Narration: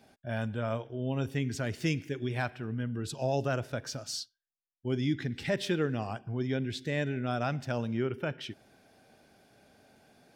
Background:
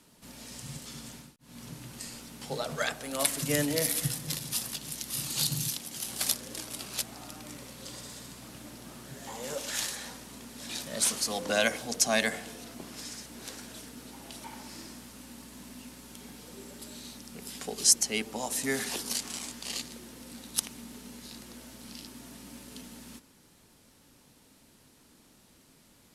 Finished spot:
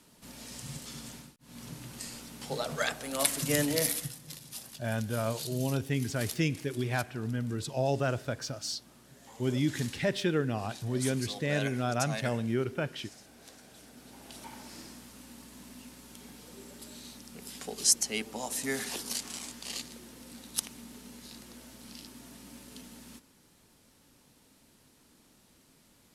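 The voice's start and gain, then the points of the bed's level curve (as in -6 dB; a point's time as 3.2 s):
4.55 s, +1.0 dB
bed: 3.88 s 0 dB
4.13 s -11 dB
13.63 s -11 dB
14.4 s -2.5 dB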